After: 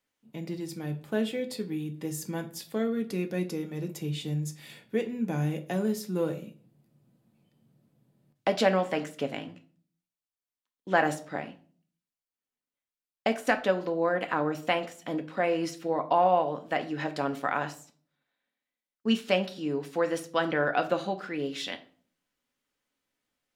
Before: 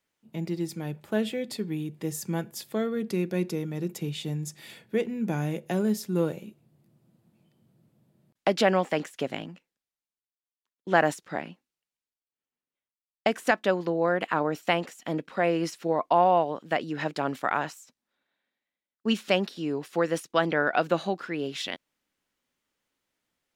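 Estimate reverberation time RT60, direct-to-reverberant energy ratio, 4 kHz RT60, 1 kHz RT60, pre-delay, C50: 0.45 s, 5.5 dB, 0.35 s, 0.40 s, 4 ms, 15.0 dB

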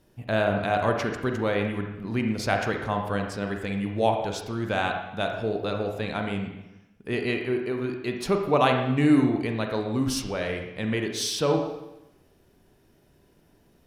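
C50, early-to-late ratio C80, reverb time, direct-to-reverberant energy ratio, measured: 5.0 dB, 7.5 dB, 0.90 s, 3.0 dB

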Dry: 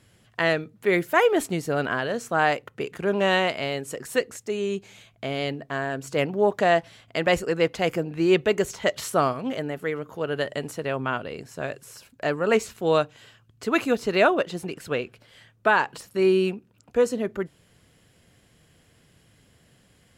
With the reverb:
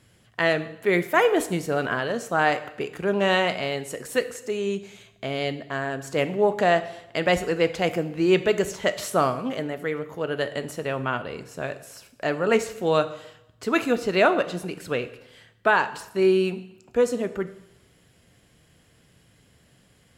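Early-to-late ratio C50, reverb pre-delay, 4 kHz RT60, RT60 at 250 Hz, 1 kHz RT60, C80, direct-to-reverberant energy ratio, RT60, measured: 14.0 dB, 6 ms, 0.80 s, 0.80 s, 0.80 s, 16.5 dB, 10.5 dB, 0.85 s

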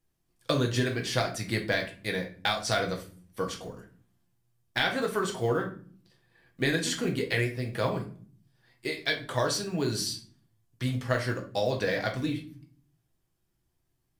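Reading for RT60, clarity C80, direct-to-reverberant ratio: 0.45 s, 16.0 dB, 1.0 dB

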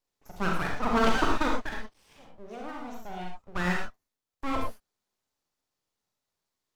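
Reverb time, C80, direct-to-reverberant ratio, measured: no single decay rate, 6.5 dB, -0.5 dB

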